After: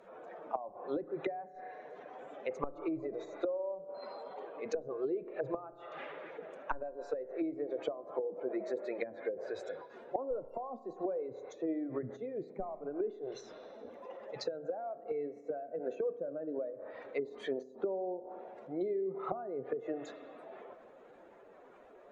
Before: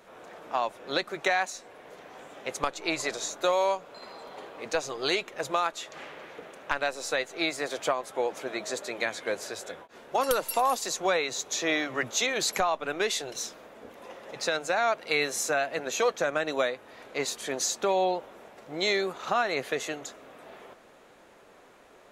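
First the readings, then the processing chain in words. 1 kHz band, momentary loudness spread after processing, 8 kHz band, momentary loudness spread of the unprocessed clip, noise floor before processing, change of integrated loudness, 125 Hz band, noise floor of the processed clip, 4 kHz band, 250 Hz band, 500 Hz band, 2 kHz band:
-14.0 dB, 13 LU, under -30 dB, 18 LU, -55 dBFS, -10.5 dB, -6.5 dB, -57 dBFS, -24.0 dB, -3.0 dB, -6.5 dB, -21.0 dB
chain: spectral contrast enhancement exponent 1.8; spring tank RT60 1.4 s, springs 31 ms, chirp 75 ms, DRR 12 dB; low-pass that closes with the level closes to 330 Hz, closed at -26.5 dBFS; trim -2 dB

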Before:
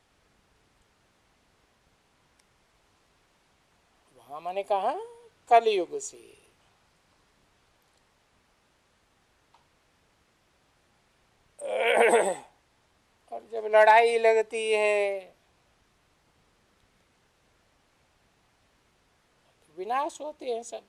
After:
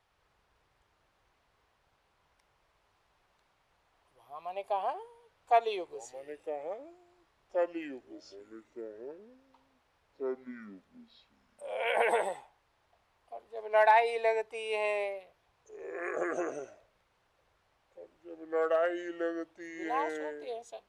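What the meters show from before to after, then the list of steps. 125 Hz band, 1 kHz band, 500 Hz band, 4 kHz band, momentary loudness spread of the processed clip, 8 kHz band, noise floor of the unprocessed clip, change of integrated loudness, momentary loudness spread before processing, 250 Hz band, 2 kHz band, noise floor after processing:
no reading, -4.5 dB, -5.5 dB, -7.5 dB, 20 LU, -12.0 dB, -68 dBFS, -7.5 dB, 19 LU, +0.5 dB, -5.5 dB, -74 dBFS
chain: graphic EQ 250/1000/8000 Hz -10/+4/-7 dB; ever faster or slower copies 191 ms, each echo -5 st, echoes 2, each echo -6 dB; trim -7 dB

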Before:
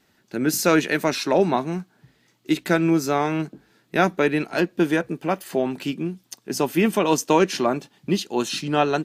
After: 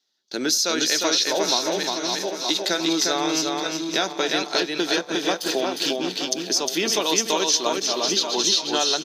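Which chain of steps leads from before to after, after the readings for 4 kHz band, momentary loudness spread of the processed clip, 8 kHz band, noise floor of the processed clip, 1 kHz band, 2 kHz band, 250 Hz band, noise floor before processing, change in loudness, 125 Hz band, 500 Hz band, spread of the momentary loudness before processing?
+12.0 dB, 5 LU, +10.0 dB, -37 dBFS, -2.5 dB, -0.5 dB, -5.0 dB, -64 dBFS, +1.0 dB, -13.5 dB, -2.5 dB, 11 LU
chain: backward echo that repeats 459 ms, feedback 51%, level -10.5 dB; high-pass 360 Hz 12 dB/octave; high-order bell 4.6 kHz +16 dB 1.2 oct; compression 4:1, threshold -23 dBFS, peak gain reduction 12.5 dB; gate with hold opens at -35 dBFS; on a send: delay 356 ms -3 dB; on the sum: trim +2.5 dB

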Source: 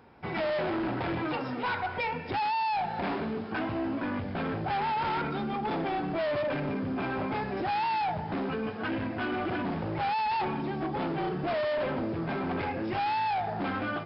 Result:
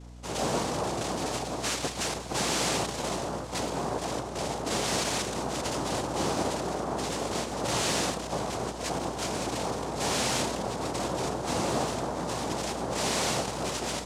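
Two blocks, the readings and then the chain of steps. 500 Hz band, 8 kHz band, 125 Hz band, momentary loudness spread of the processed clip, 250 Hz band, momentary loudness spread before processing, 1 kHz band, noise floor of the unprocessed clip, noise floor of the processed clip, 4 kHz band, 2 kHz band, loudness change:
+1.0 dB, no reading, +0.5 dB, 6 LU, -1.5 dB, 4 LU, -2.5 dB, -36 dBFS, -37 dBFS, +9.5 dB, -1.5 dB, +1.0 dB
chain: noise-vocoded speech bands 2; hum 60 Hz, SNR 15 dB

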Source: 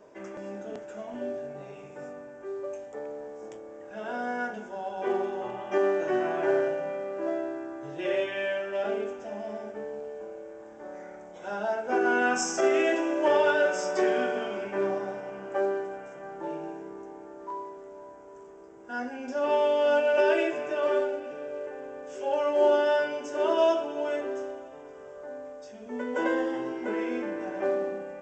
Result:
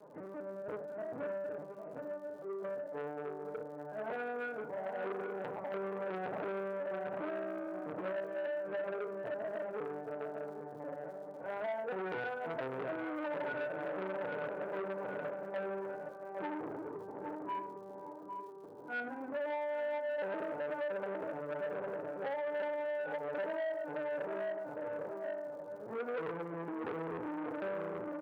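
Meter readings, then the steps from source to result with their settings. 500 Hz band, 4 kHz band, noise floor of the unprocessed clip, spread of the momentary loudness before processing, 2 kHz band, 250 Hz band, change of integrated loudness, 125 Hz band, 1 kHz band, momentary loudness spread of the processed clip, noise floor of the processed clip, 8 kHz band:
-10.0 dB, -17.0 dB, -46 dBFS, 19 LU, -10.5 dB, -10.0 dB, -11.0 dB, no reading, -10.0 dB, 7 LU, -48 dBFS, under -30 dB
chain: tracing distortion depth 0.089 ms; low-pass 1.4 kHz 24 dB/octave; LPC vocoder at 8 kHz pitch kept; high-pass 130 Hz 24 dB/octave; hum notches 50/100/150/200/250 Hz; feedback delay 807 ms, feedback 32%, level -9 dB; FDN reverb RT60 0.36 s, low-frequency decay 1.2×, high-frequency decay 0.95×, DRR 6 dB; dynamic bell 460 Hz, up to +7 dB, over -47 dBFS, Q 6.1; compression 8:1, threshold -31 dBFS, peak gain reduction 14.5 dB; crackle 130 per s -54 dBFS; transformer saturation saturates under 1.4 kHz; trim -2 dB

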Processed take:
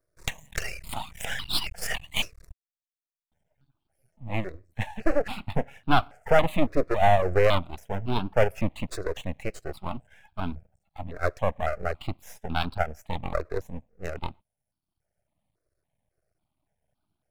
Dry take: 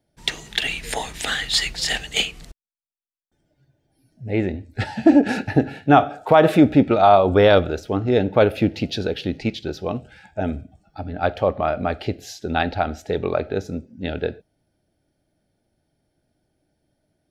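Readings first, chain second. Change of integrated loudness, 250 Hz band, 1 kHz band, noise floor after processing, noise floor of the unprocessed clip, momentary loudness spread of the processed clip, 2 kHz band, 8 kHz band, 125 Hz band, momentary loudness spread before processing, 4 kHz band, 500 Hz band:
-8.5 dB, -13.5 dB, -7.5 dB, under -85 dBFS, -73 dBFS, 15 LU, -6.0 dB, no reading, -6.5 dB, 14 LU, -9.0 dB, -8.0 dB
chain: reverb removal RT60 0.96 s; half-wave rectifier; stepped phaser 3.6 Hz 840–1900 Hz

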